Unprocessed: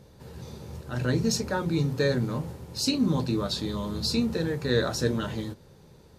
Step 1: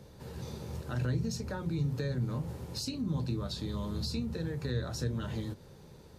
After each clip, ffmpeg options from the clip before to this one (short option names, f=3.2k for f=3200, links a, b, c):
-filter_complex "[0:a]acrossover=split=140[a][b];[b]acompressor=threshold=-37dB:ratio=6[c];[a][c]amix=inputs=2:normalize=0"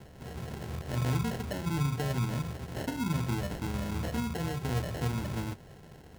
-af "acrusher=samples=37:mix=1:aa=0.000001,volume=2dB"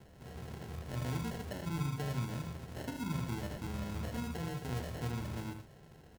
-af "aecho=1:1:78|115:0.398|0.266,volume=-7dB"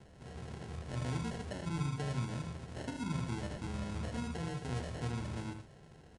-af "aresample=22050,aresample=44100"